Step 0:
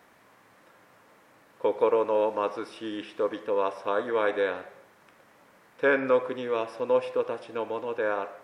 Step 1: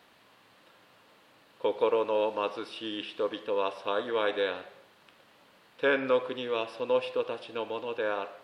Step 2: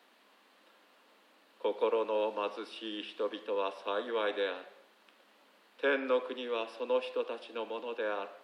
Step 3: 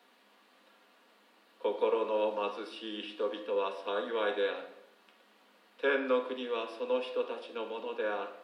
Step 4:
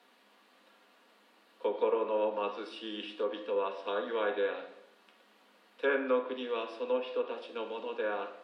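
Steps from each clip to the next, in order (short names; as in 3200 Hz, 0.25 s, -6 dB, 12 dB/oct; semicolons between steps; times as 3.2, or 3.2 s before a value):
band shelf 3500 Hz +9.5 dB 1 oct; gain -3 dB
steep high-pass 200 Hz 96 dB/oct; gain -4 dB
reverb RT60 0.60 s, pre-delay 4 ms, DRR 3 dB; gain -1.5 dB
treble ducked by the level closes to 2400 Hz, closed at -27 dBFS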